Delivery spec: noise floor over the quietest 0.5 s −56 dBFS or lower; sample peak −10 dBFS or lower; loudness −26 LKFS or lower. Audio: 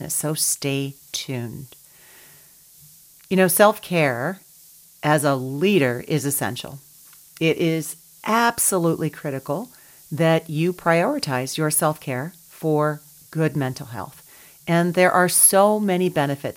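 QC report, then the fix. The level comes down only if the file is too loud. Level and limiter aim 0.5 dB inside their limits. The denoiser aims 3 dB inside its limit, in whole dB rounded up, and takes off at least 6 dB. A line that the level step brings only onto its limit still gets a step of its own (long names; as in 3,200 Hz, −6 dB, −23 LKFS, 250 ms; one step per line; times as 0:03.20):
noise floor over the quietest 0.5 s −50 dBFS: out of spec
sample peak −2.0 dBFS: out of spec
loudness −20.5 LKFS: out of spec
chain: broadband denoise 6 dB, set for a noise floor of −50 dBFS
level −6 dB
brickwall limiter −10.5 dBFS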